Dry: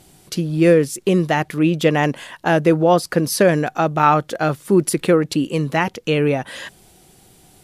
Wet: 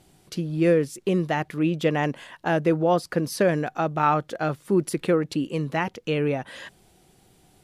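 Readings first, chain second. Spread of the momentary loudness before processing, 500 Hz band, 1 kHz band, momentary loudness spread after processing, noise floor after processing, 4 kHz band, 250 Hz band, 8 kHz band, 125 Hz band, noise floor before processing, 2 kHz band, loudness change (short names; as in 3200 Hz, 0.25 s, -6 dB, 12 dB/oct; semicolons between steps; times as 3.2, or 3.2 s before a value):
9 LU, -6.5 dB, -6.5 dB, 9 LU, -59 dBFS, -8.5 dB, -6.5 dB, -11.0 dB, -6.5 dB, -52 dBFS, -7.0 dB, -6.5 dB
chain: high shelf 5400 Hz -6.5 dB; gain -6.5 dB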